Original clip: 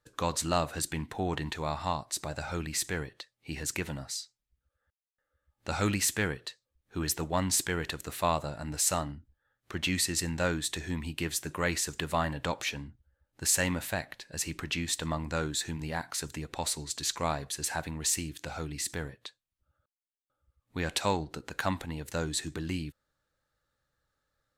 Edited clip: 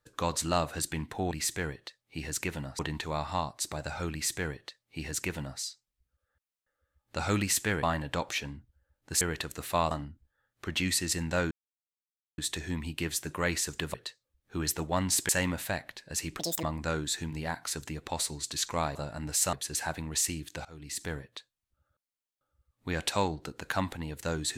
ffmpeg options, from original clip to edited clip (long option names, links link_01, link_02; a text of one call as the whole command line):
ffmpeg -i in.wav -filter_complex "[0:a]asplit=14[link_01][link_02][link_03][link_04][link_05][link_06][link_07][link_08][link_09][link_10][link_11][link_12][link_13][link_14];[link_01]atrim=end=1.312[link_15];[link_02]atrim=start=2.638:end=4.122[link_16];[link_03]atrim=start=1.308:end=6.352[link_17];[link_04]atrim=start=12.138:end=13.522[link_18];[link_05]atrim=start=7.698:end=8.402[link_19];[link_06]atrim=start=8.978:end=10.58,asetpts=PTS-STARTPTS,afade=type=out:start_time=1.598:duration=0.004:curve=hsin,apad=pad_dur=0.87[link_20];[link_07]atrim=start=10.58:end=12.142,asetpts=PTS-STARTPTS,afade=type=in:duration=0.004:curve=hsin[link_21];[link_08]atrim=start=6.348:end=7.702[link_22];[link_09]atrim=start=13.518:end=14.624[link_23];[link_10]atrim=start=14.62:end=15.1,asetpts=PTS-STARTPTS,asetrate=87759,aresample=44100,atrim=end_sample=10637,asetpts=PTS-STARTPTS[link_24];[link_11]atrim=start=15.096:end=17.422[link_25];[link_12]atrim=start=8.398:end=8.982[link_26];[link_13]atrim=start=17.418:end=18.54,asetpts=PTS-STARTPTS,afade=type=out:start_time=1.118:duration=0.004:curve=hsin:silence=0.0841395[link_27];[link_14]atrim=start=18.54,asetpts=PTS-STARTPTS,afade=type=in:duration=0.44:silence=0.0841395[link_28];[link_15][link_16]acrossfade=duration=0.004:curve1=hsin:curve2=hsin[link_29];[link_29][link_17]acrossfade=duration=0.004:curve1=hsin:curve2=hsin[link_30];[link_30][link_18]acrossfade=duration=0.004:curve1=hsin:curve2=hsin[link_31];[link_31][link_19]acrossfade=duration=0.004:curve1=hsin:curve2=hsin[link_32];[link_20][link_21]concat=n=2:v=0:a=1[link_33];[link_32][link_33]acrossfade=duration=0.004:curve1=hsin:curve2=hsin[link_34];[link_34][link_22]acrossfade=duration=0.004:curve1=hsin:curve2=hsin[link_35];[link_35][link_23]acrossfade=duration=0.004:curve1=hsin:curve2=hsin[link_36];[link_36][link_24]acrossfade=duration=0.004:curve1=hsin:curve2=hsin[link_37];[link_37][link_25]acrossfade=duration=0.004:curve1=hsin:curve2=hsin[link_38];[link_38][link_26]acrossfade=duration=0.004:curve1=hsin:curve2=hsin[link_39];[link_27][link_28]concat=n=2:v=0:a=1[link_40];[link_39][link_40]acrossfade=duration=0.004:curve1=hsin:curve2=hsin" out.wav